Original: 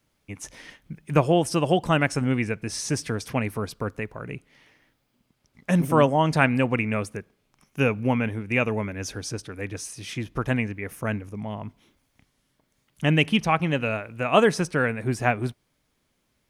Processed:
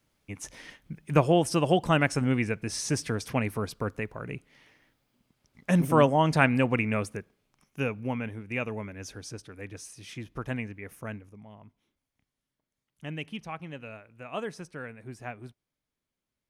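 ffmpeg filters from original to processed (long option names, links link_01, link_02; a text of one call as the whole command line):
ffmpeg -i in.wav -af "volume=-2dB,afade=type=out:start_time=7.06:duration=0.86:silence=0.473151,afade=type=out:start_time=10.94:duration=0.51:silence=0.398107" out.wav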